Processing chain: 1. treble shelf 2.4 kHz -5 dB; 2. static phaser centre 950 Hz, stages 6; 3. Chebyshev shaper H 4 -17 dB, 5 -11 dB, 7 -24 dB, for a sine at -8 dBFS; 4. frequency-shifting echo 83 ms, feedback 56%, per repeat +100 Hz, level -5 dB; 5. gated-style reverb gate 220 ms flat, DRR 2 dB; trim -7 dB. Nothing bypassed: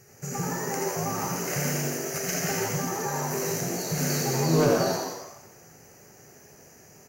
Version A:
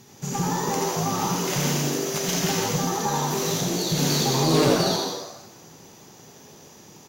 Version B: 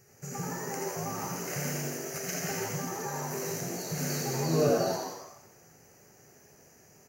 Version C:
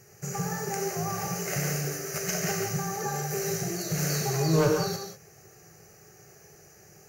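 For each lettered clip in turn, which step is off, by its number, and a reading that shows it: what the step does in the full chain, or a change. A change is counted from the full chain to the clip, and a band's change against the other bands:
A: 2, momentary loudness spread change -2 LU; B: 3, 500 Hz band +1.5 dB; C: 4, echo-to-direct 1.5 dB to -2.0 dB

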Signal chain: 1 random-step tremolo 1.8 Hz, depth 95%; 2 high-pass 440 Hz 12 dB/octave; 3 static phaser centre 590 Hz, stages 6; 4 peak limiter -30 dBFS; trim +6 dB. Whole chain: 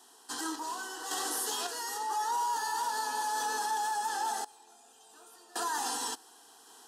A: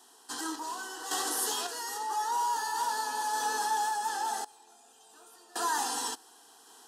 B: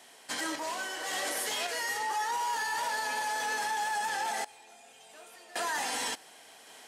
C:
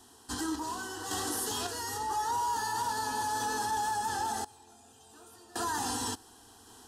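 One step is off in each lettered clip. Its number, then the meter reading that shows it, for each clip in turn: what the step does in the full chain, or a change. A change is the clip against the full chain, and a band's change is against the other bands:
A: 4, crest factor change +4.0 dB; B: 3, 2 kHz band +7.0 dB; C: 2, 250 Hz band +7.0 dB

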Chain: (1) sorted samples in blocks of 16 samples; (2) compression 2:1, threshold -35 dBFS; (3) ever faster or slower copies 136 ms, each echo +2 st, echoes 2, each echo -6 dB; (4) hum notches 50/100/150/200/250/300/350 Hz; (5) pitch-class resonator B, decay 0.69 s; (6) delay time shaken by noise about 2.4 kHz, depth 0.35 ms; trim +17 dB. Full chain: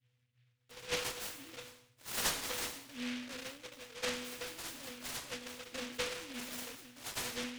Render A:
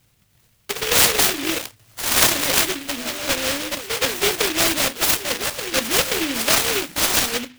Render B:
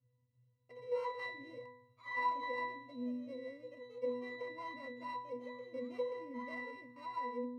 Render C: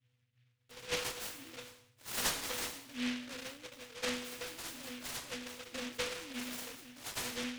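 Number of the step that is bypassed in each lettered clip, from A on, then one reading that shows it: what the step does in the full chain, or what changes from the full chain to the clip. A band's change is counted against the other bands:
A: 5, 250 Hz band -2.5 dB; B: 6, 4 kHz band -17.5 dB; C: 4, 250 Hz band +2.5 dB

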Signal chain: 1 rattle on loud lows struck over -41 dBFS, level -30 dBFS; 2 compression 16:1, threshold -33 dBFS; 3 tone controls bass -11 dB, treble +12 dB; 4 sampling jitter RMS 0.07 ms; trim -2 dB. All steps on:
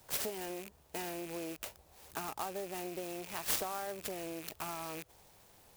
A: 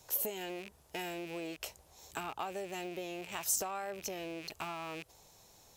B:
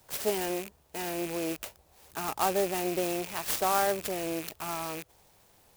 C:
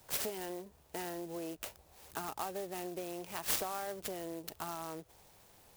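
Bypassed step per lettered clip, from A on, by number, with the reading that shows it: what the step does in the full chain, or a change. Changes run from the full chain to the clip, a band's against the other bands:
4, 8 kHz band +3.0 dB; 2, mean gain reduction 6.0 dB; 1, momentary loudness spread change +3 LU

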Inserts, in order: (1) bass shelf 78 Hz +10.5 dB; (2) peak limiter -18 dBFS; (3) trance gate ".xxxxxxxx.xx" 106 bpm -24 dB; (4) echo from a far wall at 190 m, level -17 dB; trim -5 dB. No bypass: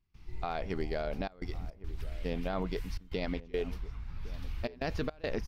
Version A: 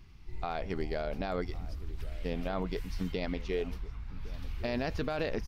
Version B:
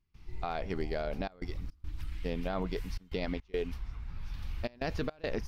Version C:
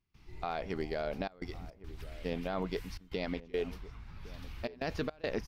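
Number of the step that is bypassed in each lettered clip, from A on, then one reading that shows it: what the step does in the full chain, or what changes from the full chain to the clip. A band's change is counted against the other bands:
3, loudness change +1.0 LU; 4, echo-to-direct -20.5 dB to none; 1, 125 Hz band -3.5 dB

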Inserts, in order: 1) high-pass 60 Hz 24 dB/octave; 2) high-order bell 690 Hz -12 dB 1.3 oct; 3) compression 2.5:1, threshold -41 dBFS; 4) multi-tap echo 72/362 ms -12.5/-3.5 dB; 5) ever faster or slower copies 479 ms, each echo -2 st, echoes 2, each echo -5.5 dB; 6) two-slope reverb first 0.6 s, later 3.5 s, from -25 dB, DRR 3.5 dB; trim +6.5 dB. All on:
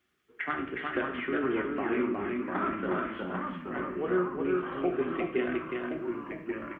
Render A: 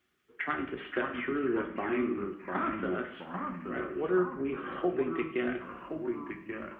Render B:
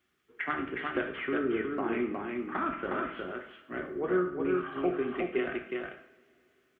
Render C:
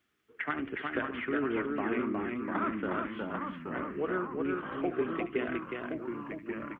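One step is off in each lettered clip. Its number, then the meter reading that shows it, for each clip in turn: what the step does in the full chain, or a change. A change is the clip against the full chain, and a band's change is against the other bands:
4, momentary loudness spread change +2 LU; 5, momentary loudness spread change +3 LU; 6, 500 Hz band -1.5 dB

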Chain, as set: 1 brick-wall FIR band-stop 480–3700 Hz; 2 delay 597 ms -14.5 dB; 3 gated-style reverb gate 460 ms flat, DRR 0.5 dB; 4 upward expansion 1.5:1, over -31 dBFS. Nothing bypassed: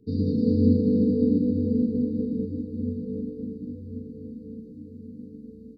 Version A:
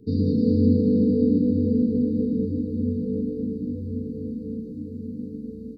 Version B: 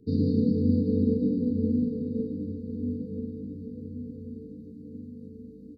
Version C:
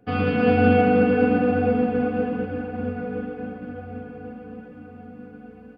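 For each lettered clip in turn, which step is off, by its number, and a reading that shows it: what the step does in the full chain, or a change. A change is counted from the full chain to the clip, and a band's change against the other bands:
4, momentary loudness spread change -6 LU; 3, momentary loudness spread change -2 LU; 1, loudness change +3.5 LU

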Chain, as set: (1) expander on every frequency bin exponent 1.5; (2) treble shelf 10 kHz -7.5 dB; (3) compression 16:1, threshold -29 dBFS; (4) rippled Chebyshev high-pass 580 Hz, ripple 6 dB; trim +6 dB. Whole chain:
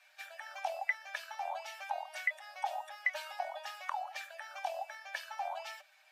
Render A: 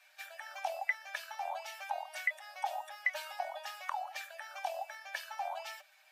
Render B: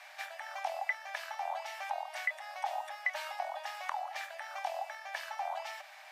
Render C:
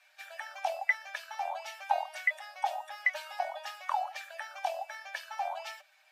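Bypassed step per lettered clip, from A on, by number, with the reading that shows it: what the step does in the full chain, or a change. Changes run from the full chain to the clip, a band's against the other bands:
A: 2, 8 kHz band +2.0 dB; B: 1, momentary loudness spread change -3 LU; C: 3, mean gain reduction 2.5 dB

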